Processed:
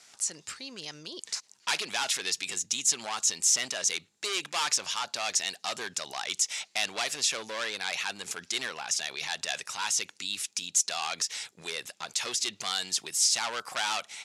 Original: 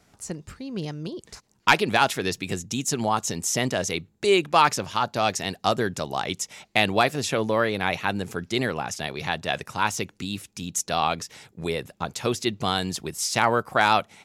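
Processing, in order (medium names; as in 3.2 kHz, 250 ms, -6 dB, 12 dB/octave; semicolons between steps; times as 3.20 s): overload inside the chain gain 21.5 dB; peak limiter -29 dBFS, peak gain reduction 7.5 dB; frequency weighting ITU-R 468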